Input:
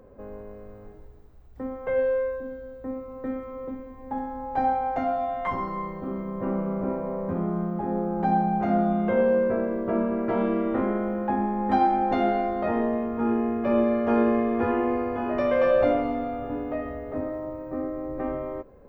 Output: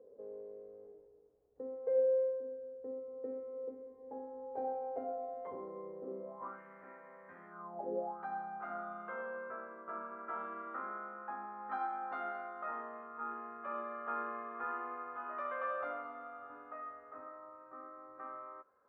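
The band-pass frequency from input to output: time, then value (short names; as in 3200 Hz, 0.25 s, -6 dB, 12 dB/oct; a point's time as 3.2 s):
band-pass, Q 6.7
6.2 s 460 Hz
6.6 s 1800 Hz
7.49 s 1800 Hz
7.93 s 430 Hz
8.2 s 1300 Hz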